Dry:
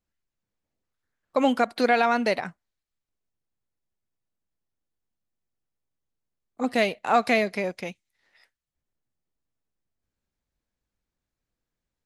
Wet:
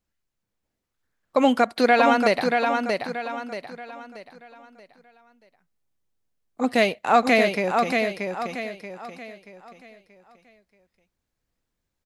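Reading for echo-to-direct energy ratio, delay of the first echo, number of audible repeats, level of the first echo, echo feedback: −4.0 dB, 631 ms, 4, −4.5 dB, 38%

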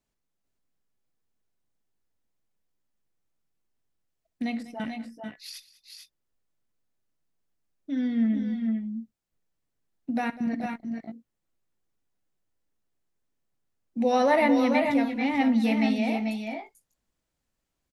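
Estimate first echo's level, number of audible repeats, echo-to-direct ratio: −19.0 dB, 3, −5.0 dB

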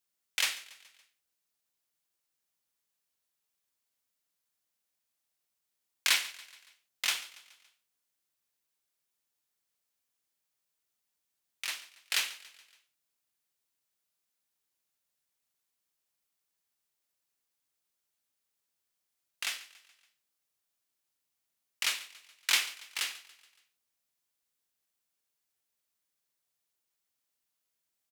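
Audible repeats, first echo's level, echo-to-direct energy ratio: 3, −19.0 dB, −17.5 dB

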